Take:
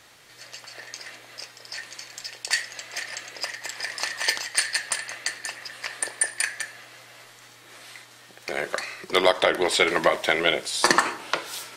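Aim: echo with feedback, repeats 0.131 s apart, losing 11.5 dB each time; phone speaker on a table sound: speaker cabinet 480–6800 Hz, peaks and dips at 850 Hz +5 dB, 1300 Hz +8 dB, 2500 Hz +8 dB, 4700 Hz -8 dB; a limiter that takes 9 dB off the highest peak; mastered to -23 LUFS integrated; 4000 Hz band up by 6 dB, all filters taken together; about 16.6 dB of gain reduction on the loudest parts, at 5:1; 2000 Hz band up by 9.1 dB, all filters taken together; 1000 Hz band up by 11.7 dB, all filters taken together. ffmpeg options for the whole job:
-af "equalizer=f=1k:t=o:g=7,equalizer=f=2k:t=o:g=3,equalizer=f=4k:t=o:g=7.5,acompressor=threshold=-28dB:ratio=5,alimiter=limit=-18dB:level=0:latency=1,highpass=f=480:w=0.5412,highpass=f=480:w=1.3066,equalizer=f=850:t=q:w=4:g=5,equalizer=f=1.3k:t=q:w=4:g=8,equalizer=f=2.5k:t=q:w=4:g=8,equalizer=f=4.7k:t=q:w=4:g=-8,lowpass=f=6.8k:w=0.5412,lowpass=f=6.8k:w=1.3066,aecho=1:1:131|262|393:0.266|0.0718|0.0194,volume=8dB"

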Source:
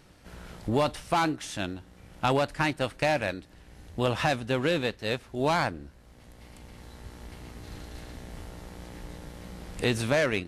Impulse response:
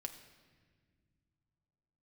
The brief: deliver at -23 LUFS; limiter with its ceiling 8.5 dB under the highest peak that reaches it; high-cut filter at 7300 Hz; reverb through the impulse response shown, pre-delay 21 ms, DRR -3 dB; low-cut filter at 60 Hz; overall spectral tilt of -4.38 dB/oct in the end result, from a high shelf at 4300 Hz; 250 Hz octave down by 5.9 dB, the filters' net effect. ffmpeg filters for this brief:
-filter_complex "[0:a]highpass=60,lowpass=7.3k,equalizer=f=250:t=o:g=-8,highshelf=f=4.3k:g=3,alimiter=limit=-20.5dB:level=0:latency=1,asplit=2[a][b];[1:a]atrim=start_sample=2205,adelay=21[c];[b][c]afir=irnorm=-1:irlink=0,volume=6dB[d];[a][d]amix=inputs=2:normalize=0,volume=5.5dB"

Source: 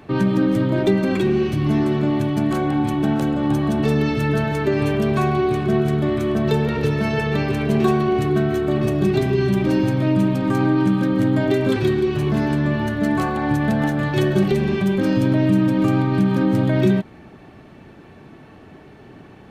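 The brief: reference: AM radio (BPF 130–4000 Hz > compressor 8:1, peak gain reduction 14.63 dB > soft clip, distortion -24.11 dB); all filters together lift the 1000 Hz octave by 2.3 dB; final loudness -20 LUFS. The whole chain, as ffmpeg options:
-af "highpass=130,lowpass=4k,equalizer=f=1k:t=o:g=3,acompressor=threshold=-27dB:ratio=8,asoftclip=threshold=-20.5dB,volume=11.5dB"

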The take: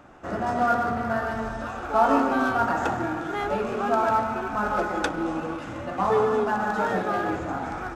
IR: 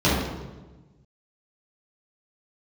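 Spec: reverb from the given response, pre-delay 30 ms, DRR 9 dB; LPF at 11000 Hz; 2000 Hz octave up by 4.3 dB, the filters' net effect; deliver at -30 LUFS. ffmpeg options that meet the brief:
-filter_complex "[0:a]lowpass=11k,equalizer=f=2k:t=o:g=6.5,asplit=2[a][b];[1:a]atrim=start_sample=2205,adelay=30[c];[b][c]afir=irnorm=-1:irlink=0,volume=-28.5dB[d];[a][d]amix=inputs=2:normalize=0,volume=-7dB"

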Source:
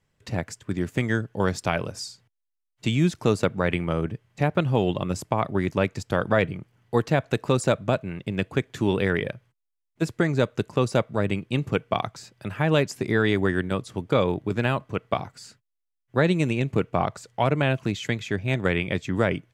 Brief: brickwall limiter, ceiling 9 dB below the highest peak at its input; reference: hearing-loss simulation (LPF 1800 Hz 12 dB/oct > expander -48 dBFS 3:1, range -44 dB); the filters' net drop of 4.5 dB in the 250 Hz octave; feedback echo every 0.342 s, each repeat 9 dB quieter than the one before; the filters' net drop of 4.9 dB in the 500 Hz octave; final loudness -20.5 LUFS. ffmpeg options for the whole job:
-af "equalizer=f=250:t=o:g=-5.5,equalizer=f=500:t=o:g=-4.5,alimiter=limit=-17dB:level=0:latency=1,lowpass=1.8k,aecho=1:1:342|684|1026|1368:0.355|0.124|0.0435|0.0152,agate=range=-44dB:threshold=-48dB:ratio=3,volume=11dB"

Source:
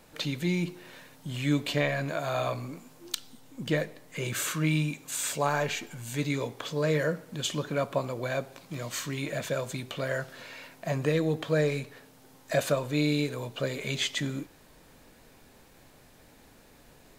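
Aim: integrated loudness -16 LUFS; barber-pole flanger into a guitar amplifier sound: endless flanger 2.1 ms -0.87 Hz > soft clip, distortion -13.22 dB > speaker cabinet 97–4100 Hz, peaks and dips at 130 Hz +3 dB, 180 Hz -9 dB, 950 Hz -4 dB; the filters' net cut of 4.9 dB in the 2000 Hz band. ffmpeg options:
-filter_complex "[0:a]equalizer=f=2k:t=o:g=-6,asplit=2[a][b];[b]adelay=2.1,afreqshift=-0.87[c];[a][c]amix=inputs=2:normalize=1,asoftclip=threshold=-27dB,highpass=97,equalizer=f=130:t=q:w=4:g=3,equalizer=f=180:t=q:w=4:g=-9,equalizer=f=950:t=q:w=4:g=-4,lowpass=f=4.1k:w=0.5412,lowpass=f=4.1k:w=1.3066,volume=21.5dB"

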